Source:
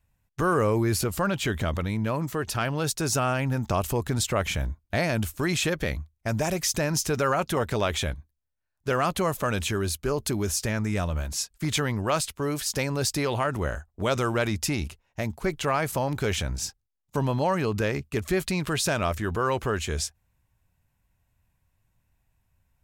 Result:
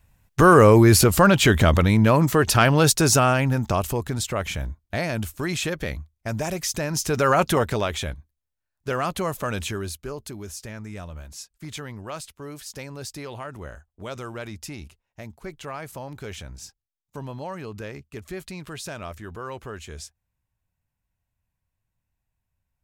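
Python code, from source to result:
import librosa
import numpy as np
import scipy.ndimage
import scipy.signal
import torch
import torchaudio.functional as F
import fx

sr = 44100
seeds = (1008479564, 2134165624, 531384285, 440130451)

y = fx.gain(x, sr, db=fx.line((2.81, 10.5), (4.18, -1.0), (6.89, -1.0), (7.44, 7.5), (7.93, -1.0), (9.64, -1.0), (10.33, -9.5)))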